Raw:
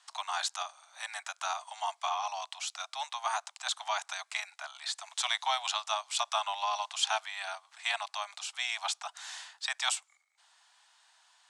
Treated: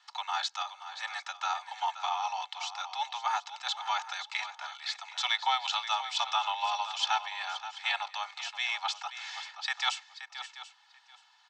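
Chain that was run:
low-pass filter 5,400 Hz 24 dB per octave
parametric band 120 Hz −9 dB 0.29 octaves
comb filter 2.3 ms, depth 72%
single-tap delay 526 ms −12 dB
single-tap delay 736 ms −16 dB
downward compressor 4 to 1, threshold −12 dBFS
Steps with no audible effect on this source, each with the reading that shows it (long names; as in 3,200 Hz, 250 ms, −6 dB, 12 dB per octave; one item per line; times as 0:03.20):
parametric band 120 Hz: nothing at its input below 510 Hz
downward compressor, threshold −12 dBFS: peak of its input −14.0 dBFS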